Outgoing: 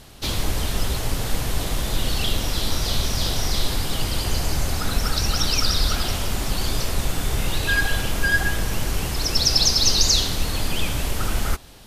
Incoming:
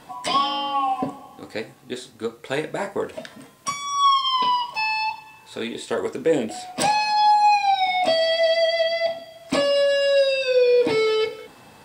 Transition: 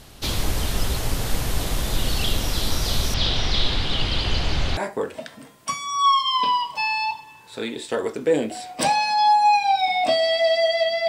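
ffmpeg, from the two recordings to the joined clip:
-filter_complex "[0:a]asettb=1/sr,asplit=3[s0][s1][s2];[s0]atrim=end=3.144[s3];[s1]atrim=start=3.14:end=4.77,asetpts=PTS-STARTPTS,afade=t=in:d=0.004:c=qsin,afade=t=out:st=1.626:d=0.004:c=qsin,lowpass=f=3500:t=q:w=2.2[s4];[s2]atrim=start=4.766[s5];[s3][s4]acrossfade=d=0.004:c1=hsin:c2=qsin[s6];[s6][s5]acrossfade=d=0.004:c1=qsin:c2=hsin,apad=whole_dur=11.08,atrim=end=11.08,atrim=end=4.772[s7];[1:a]atrim=start=2.758:end=9.07[s8];[s7][s8]acrossfade=d=0.004:c1=hsin:c2=hsin"

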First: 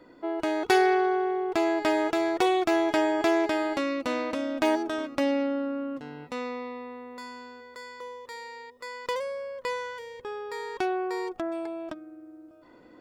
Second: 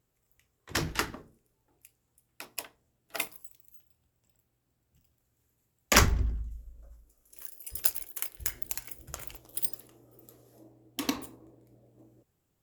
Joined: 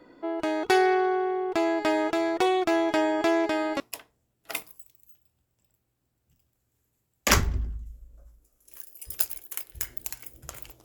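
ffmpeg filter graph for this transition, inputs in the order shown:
-filter_complex "[1:a]asplit=2[s0][s1];[0:a]apad=whole_dur=10.84,atrim=end=10.84,atrim=end=3.802[s2];[s1]atrim=start=2.448:end=9.49[s3];[s0]atrim=start=2.03:end=2.45,asetpts=PTS-STARTPTS,volume=0.178,afade=t=in:d=0.004:c=hsin,afade=t=out:st=0.416:d=0.004:c=hsin,adelay=3380[s4];[s2][s3]acrossfade=d=0.004:c1=hsin:c2=hsin[s5];[s5][s4]amix=inputs=2:normalize=0"

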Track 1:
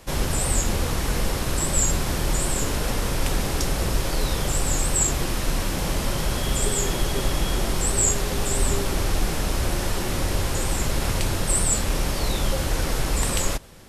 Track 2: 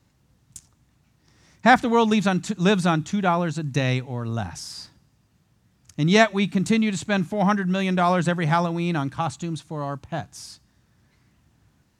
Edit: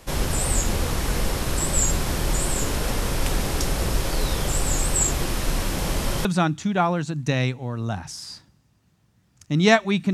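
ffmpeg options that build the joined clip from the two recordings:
-filter_complex "[0:a]apad=whole_dur=10.13,atrim=end=10.13,atrim=end=6.252[s0];[1:a]atrim=start=2.728:end=6.61[s1];[s0][s1]acrossfade=d=0.004:c1=hsin:c2=hsin"

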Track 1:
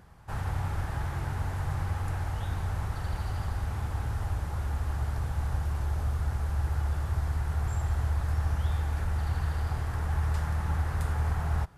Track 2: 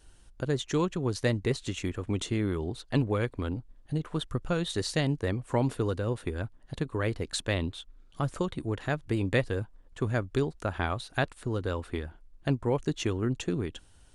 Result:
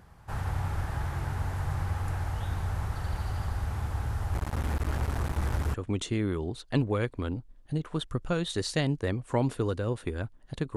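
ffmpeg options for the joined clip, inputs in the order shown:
-filter_complex "[0:a]asplit=3[s0][s1][s2];[s0]afade=t=out:st=4.33:d=0.02[s3];[s1]acrusher=bits=4:mix=0:aa=0.5,afade=t=in:st=4.33:d=0.02,afade=t=out:st=5.74:d=0.02[s4];[s2]afade=t=in:st=5.74:d=0.02[s5];[s3][s4][s5]amix=inputs=3:normalize=0,apad=whole_dur=10.76,atrim=end=10.76,atrim=end=5.742[s6];[1:a]atrim=start=1.938:end=6.96[s7];[s6][s7]acrossfade=d=0.004:c1=hsin:c2=hsin"

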